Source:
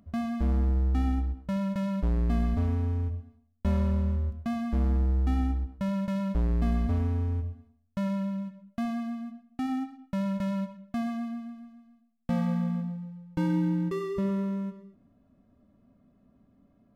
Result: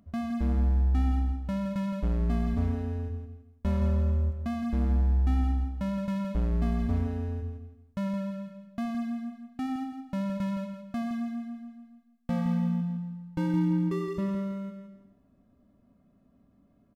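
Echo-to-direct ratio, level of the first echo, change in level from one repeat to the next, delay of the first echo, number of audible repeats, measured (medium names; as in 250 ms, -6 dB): -7.5 dB, -8.0 dB, -11.0 dB, 167 ms, 3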